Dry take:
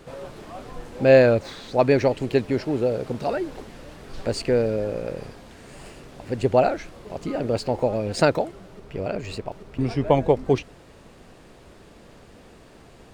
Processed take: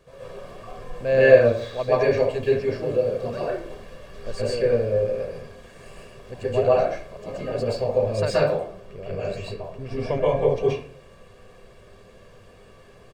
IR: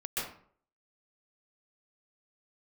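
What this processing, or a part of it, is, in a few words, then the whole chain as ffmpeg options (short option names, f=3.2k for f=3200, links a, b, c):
microphone above a desk: -filter_complex "[0:a]aecho=1:1:1.8:0.54[a];[1:a]atrim=start_sample=2205[b];[a][b]afir=irnorm=-1:irlink=0,volume=-7dB"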